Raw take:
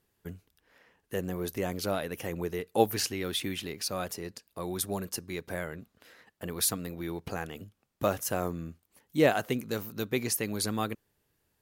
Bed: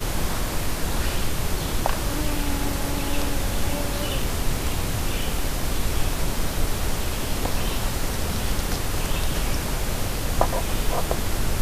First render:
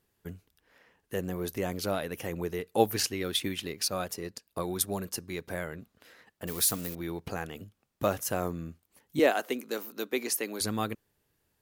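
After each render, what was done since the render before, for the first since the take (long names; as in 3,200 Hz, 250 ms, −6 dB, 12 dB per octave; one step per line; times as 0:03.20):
0:02.93–0:04.88: transient designer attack +6 dB, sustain −3 dB
0:06.47–0:06.95: spike at every zero crossing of −30 dBFS
0:09.19–0:10.61: high-pass filter 260 Hz 24 dB per octave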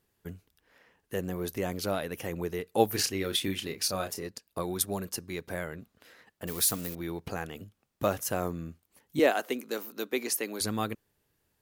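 0:02.90–0:04.28: double-tracking delay 31 ms −7.5 dB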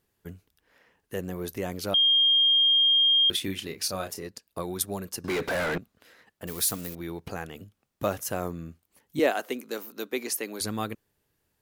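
0:01.94–0:03.30: beep over 3,220 Hz −17.5 dBFS
0:05.24–0:05.78: mid-hump overdrive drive 37 dB, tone 2,100 Hz, clips at −19.5 dBFS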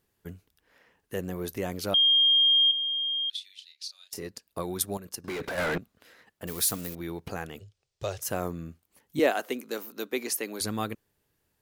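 0:02.71–0:04.13: four-pole ladder band-pass 4,400 Hz, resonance 55%
0:04.97–0:05.58: output level in coarse steps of 11 dB
0:07.59–0:08.22: drawn EQ curve 120 Hz 0 dB, 260 Hz −25 dB, 390 Hz −2 dB, 1,200 Hz −10 dB, 5,000 Hz +5 dB, 8,700 Hz −2 dB, 12,000 Hz −20 dB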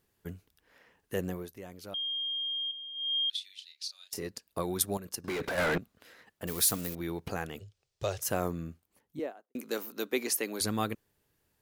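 0:01.27–0:03.16: duck −13.5 dB, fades 0.22 s
0:08.58–0:09.55: fade out and dull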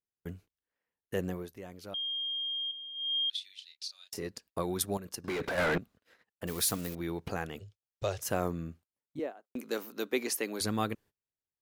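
noise gate −54 dBFS, range −27 dB
high-shelf EQ 7,200 Hz −6 dB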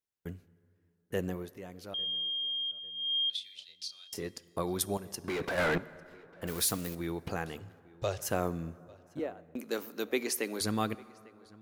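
feedback echo with a low-pass in the loop 849 ms, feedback 32%, low-pass 3,300 Hz, level −23 dB
dense smooth reverb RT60 2.5 s, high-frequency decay 0.5×, DRR 18 dB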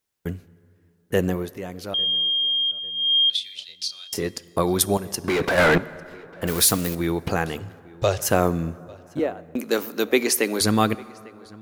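level +12 dB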